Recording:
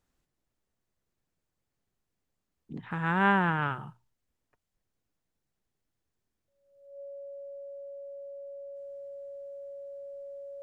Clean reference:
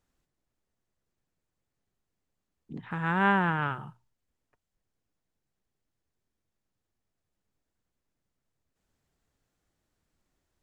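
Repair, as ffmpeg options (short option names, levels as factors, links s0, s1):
-af "bandreject=f=560:w=30"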